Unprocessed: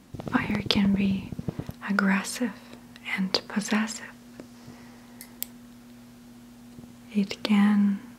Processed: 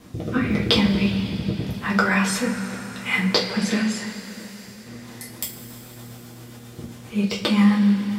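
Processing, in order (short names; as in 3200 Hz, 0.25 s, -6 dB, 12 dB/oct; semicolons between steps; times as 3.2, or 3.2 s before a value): 4.04–4.86 pre-emphasis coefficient 0.8; in parallel at +2 dB: compressor, threshold -34 dBFS, peak gain reduction 16 dB; on the sum: rotary speaker horn 0.85 Hz, later 7.5 Hz, at 4.8; two-slope reverb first 0.27 s, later 4.2 s, from -18 dB, DRR -5 dB; gain -1 dB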